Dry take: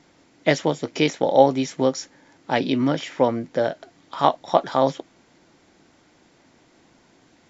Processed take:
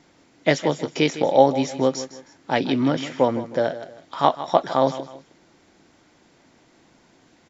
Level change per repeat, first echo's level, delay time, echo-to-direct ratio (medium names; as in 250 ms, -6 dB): -9.5 dB, -14.0 dB, 157 ms, -13.5 dB